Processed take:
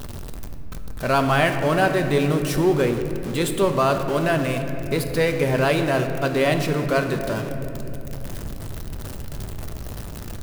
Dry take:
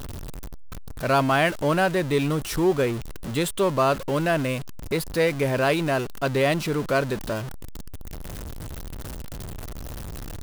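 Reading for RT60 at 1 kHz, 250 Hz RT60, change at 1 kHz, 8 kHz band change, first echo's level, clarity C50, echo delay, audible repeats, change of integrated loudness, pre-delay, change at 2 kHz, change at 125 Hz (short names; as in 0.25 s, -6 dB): 2.3 s, 4.4 s, +2.0 dB, +1.5 dB, none, 7.5 dB, none, none, +2.5 dB, 5 ms, +2.0 dB, +3.5 dB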